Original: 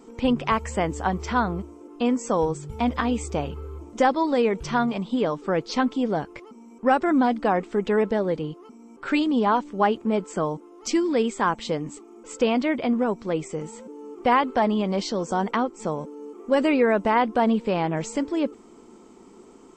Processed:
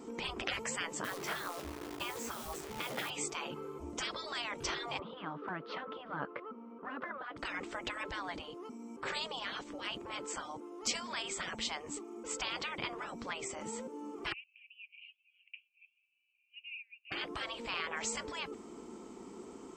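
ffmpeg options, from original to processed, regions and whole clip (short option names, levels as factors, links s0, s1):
-filter_complex "[0:a]asettb=1/sr,asplit=3[s0][s1][s2];[s0]atrim=end=1.044[s3];[s1]atrim=start=1.04:end=3.1,asetpts=PTS-STARTPTS,afade=t=in:d=0.004:c=qsin,afade=t=out:st=2.056:d=0.004:c=qsin,lowpass=f=2700:p=1,acrusher=bits=8:dc=4:mix=0:aa=0.000001,asplit=2[s4][s5];[s5]adelay=16,volume=0.398[s6];[s4][s6]amix=inputs=2:normalize=0,atrim=end_sample=90846[s7];[s2]atrim=start=3.096[s8];[s3][s7]acrossfade=d=0.004:c1=hsin:c2=qsin[s9];[s9][s8]acrossfade=d=0.004:c1=qsin:c2=hsin,asettb=1/sr,asplit=3[s10][s11][s12];[s10]atrim=end=4.994[s13];[s11]atrim=start=4.99:end=7.37,asetpts=PTS-STARTPTS,afade=t=in:d=0.004:c=qsin,afade=t=out:st=2.376:d=0.004:c=qsin,highpass=250,equalizer=f=350:t=q:w=4:g=-7,equalizer=f=510:t=q:w=4:g=5,equalizer=f=820:t=q:w=4:g=-5,equalizer=f=1300:t=q:w=4:g=9,equalizer=f=2300:t=q:w=4:g=-8,lowpass=f=2700:w=0.5412,lowpass=f=2700:w=1.3066,acompressor=threshold=0.0501:ratio=6:attack=3.2:release=140:knee=1:detection=peak[s14];[s12]atrim=start=7.366[s15];[s13][s14]acrossfade=d=0.004:c1=hsin:c2=qsin[s16];[s16][s15]acrossfade=d=0.004:c1=qsin:c2=hsin,asettb=1/sr,asplit=3[s17][s18][s19];[s17]atrim=end=14.324[s20];[s18]atrim=start=14.32:end=17.12,asetpts=PTS-STARTPTS,afade=t=in:d=0.004:c=qsin,afade=t=out:st=2.796:d=0.004:c=qsin,acompressor=threshold=0.0398:ratio=2:attack=3.2:release=140:knee=1:detection=peak,asuperpass=centerf=2600:order=8:qfactor=5.2[s21];[s19]atrim=start=17.116[s22];[s20][s21]acrossfade=d=0.004:c1=hsin:c2=qsin[s23];[s23][s22]acrossfade=d=0.004:c1=qsin:c2=hsin,highpass=41,afftfilt=real='re*lt(hypot(re,im),0.0891)':imag='im*lt(hypot(re,im),0.0891)':win_size=1024:overlap=0.75"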